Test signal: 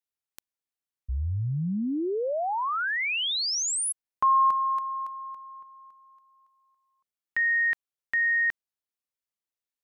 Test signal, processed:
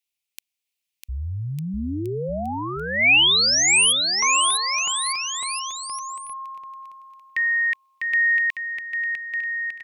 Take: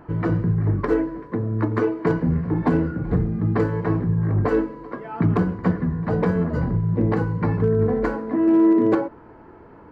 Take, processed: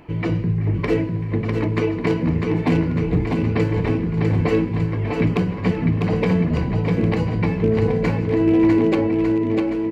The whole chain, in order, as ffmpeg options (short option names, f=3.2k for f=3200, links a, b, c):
-af "highshelf=f=1.9k:t=q:w=3:g=8,aecho=1:1:650|1202|1672|2071|2411:0.631|0.398|0.251|0.158|0.1"